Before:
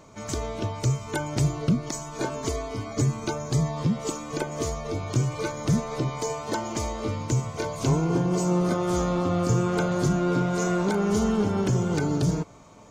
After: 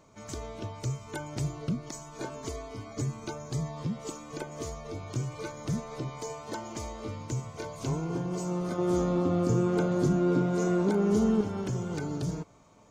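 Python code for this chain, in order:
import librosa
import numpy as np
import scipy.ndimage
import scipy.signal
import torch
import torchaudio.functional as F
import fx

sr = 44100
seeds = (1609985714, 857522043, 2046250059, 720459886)

y = fx.peak_eq(x, sr, hz=290.0, db=9.5, octaves=2.0, at=(8.78, 11.41))
y = F.gain(torch.from_numpy(y), -8.5).numpy()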